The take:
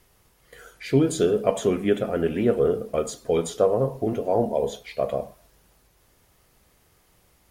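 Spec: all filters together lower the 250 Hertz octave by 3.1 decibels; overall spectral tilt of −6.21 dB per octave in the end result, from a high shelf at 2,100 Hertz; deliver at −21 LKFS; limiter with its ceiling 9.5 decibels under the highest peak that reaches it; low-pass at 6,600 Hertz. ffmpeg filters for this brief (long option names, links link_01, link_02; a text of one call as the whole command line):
ffmpeg -i in.wav -af "lowpass=6600,equalizer=frequency=250:width_type=o:gain=-4,highshelf=frequency=2100:gain=-8.5,volume=7.5dB,alimiter=limit=-9dB:level=0:latency=1" out.wav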